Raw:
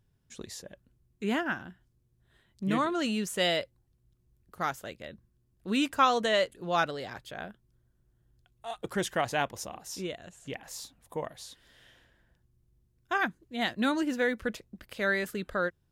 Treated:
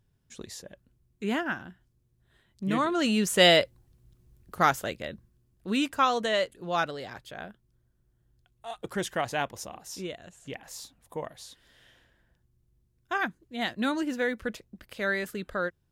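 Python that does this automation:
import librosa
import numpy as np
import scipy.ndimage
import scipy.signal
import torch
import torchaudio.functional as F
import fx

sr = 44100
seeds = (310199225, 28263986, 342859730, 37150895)

y = fx.gain(x, sr, db=fx.line((2.72, 0.5), (3.46, 9.0), (4.79, 9.0), (5.92, -0.5)))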